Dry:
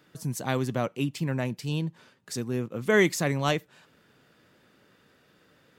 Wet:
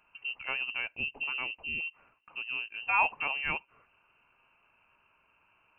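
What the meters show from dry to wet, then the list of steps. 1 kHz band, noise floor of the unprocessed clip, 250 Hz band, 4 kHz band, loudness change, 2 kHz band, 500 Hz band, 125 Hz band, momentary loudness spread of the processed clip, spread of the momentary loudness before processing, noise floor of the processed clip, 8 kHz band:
0.0 dB, -63 dBFS, -24.5 dB, -2.0 dB, -3.5 dB, +1.0 dB, -20.5 dB, -26.5 dB, 11 LU, 12 LU, -70 dBFS, under -40 dB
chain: thirty-one-band EQ 500 Hz -4 dB, 1000 Hz -9 dB, 2000 Hz +7 dB; inverted band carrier 2900 Hz; gain -6.5 dB

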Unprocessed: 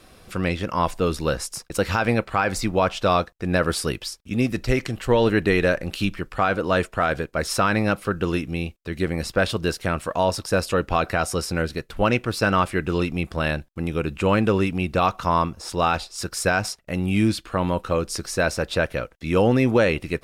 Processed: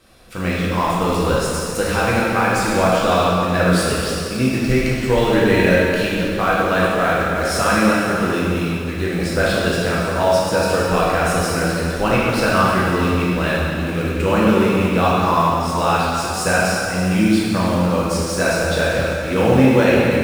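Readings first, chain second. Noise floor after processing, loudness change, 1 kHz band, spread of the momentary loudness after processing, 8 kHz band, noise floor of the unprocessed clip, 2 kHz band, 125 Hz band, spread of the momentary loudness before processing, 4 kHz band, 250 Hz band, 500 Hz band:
-24 dBFS, +5.5 dB, +5.5 dB, 6 LU, +5.5 dB, -54 dBFS, +6.0 dB, +5.0 dB, 7 LU, +5.5 dB, +6.0 dB, +5.5 dB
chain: in parallel at -8 dB: bit-crush 5-bit; on the sum: plate-style reverb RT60 2.7 s, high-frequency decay 0.9×, DRR -7 dB; gain -5 dB

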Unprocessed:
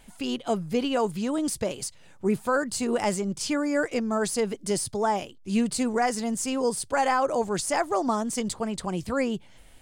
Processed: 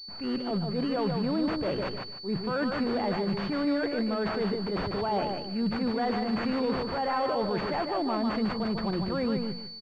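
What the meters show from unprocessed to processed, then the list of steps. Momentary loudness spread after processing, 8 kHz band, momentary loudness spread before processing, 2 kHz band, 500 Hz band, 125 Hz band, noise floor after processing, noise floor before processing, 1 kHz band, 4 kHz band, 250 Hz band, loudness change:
3 LU, under -30 dB, 6 LU, -4.0 dB, -3.0 dB, +2.0 dB, -41 dBFS, -51 dBFS, -3.5 dB, +0.5 dB, -0.5 dB, -2.5 dB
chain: notches 60/120/180 Hz; gate with hold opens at -40 dBFS; reverse; compressor 10:1, threshold -31 dBFS, peak gain reduction 12 dB; reverse; transient shaper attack -7 dB, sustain +4 dB; wow and flutter 27 cents; hard clip -30 dBFS, distortion -20 dB; on a send: feedback echo 0.15 s, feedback 25%, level -5 dB; on the sum: pulse-width modulation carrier 4500 Hz; gain +6.5 dB

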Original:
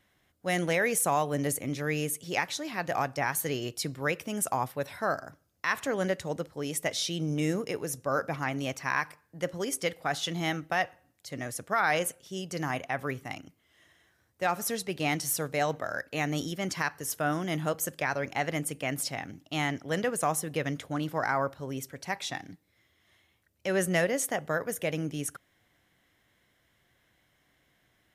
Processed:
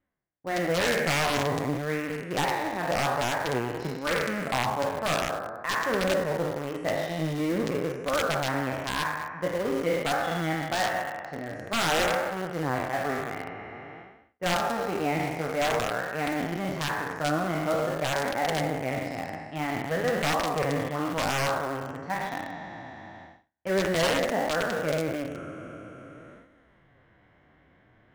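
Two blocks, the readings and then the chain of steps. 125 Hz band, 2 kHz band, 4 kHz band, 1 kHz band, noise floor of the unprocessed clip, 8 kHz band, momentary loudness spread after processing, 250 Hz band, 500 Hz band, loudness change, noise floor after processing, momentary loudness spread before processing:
+2.0 dB, +2.5 dB, +4.0 dB, +4.0 dB, -71 dBFS, -4.0 dB, 11 LU, +2.5 dB, +4.5 dB, +2.5 dB, -61 dBFS, 9 LU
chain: spectral trails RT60 2.09 s; gate -56 dBFS, range -23 dB; LPF 1500 Hz 12 dB/oct; reverse; upward compressor, threshold -32 dBFS; reverse; wrapped overs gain 17 dB; flange 0.49 Hz, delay 3.2 ms, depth 10 ms, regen -26%; in parallel at -10.5 dB: bit-crush 5-bit; on the sum: slew limiter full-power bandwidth 450 Hz; gain +1.5 dB

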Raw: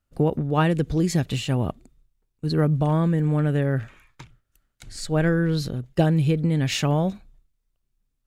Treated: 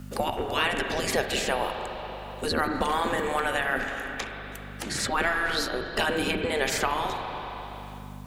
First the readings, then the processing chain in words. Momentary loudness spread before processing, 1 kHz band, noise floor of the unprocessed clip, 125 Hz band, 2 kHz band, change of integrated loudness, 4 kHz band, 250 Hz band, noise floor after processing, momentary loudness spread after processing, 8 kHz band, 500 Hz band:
7 LU, +4.0 dB, -76 dBFS, -18.5 dB, +7.5 dB, -5.0 dB, +4.0 dB, -10.5 dB, -40 dBFS, 12 LU, +3.0 dB, -2.0 dB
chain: spectral gate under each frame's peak -15 dB weak; spring tank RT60 1.7 s, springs 31/41/47 ms, chirp 40 ms, DRR 5 dB; hum 50 Hz, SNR 25 dB; three-band squash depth 70%; gain +8 dB

